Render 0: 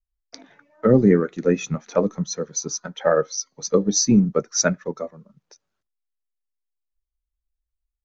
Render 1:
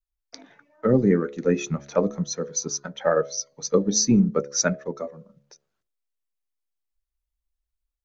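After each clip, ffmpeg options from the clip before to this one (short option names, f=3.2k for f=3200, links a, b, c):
-af "bandreject=f=70.57:t=h:w=4,bandreject=f=141.14:t=h:w=4,bandreject=f=211.71:t=h:w=4,bandreject=f=282.28:t=h:w=4,bandreject=f=352.85:t=h:w=4,bandreject=f=423.42:t=h:w=4,bandreject=f=493.99:t=h:w=4,bandreject=f=564.56:t=h:w=4,bandreject=f=635.13:t=h:w=4,bandreject=f=705.7:t=h:w=4,dynaudnorm=f=110:g=5:m=4dB,volume=-4.5dB"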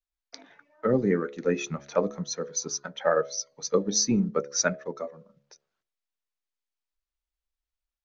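-af "lowpass=6k,lowshelf=f=370:g=-8.5"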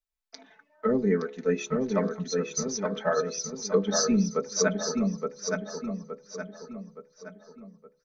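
-filter_complex "[0:a]aecho=1:1:4.6:0.84,asplit=2[a][b];[b]adelay=869,lowpass=f=4.7k:p=1,volume=-3.5dB,asplit=2[c][d];[d]adelay=869,lowpass=f=4.7k:p=1,volume=0.45,asplit=2[e][f];[f]adelay=869,lowpass=f=4.7k:p=1,volume=0.45,asplit=2[g][h];[h]adelay=869,lowpass=f=4.7k:p=1,volume=0.45,asplit=2[i][j];[j]adelay=869,lowpass=f=4.7k:p=1,volume=0.45,asplit=2[k][l];[l]adelay=869,lowpass=f=4.7k:p=1,volume=0.45[m];[c][e][g][i][k][m]amix=inputs=6:normalize=0[n];[a][n]amix=inputs=2:normalize=0,volume=-4dB"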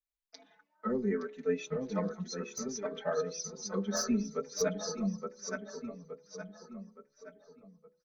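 -filter_complex "[0:a]acrossover=split=2100[a][b];[b]aeval=exprs='clip(val(0),-1,0.075)':c=same[c];[a][c]amix=inputs=2:normalize=0,asplit=2[d][e];[e]adelay=4.6,afreqshift=0.68[f];[d][f]amix=inputs=2:normalize=1,volume=-4.5dB"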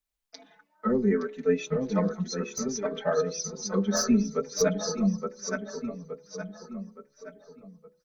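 -af "lowshelf=f=200:g=4.5,volume=6dB"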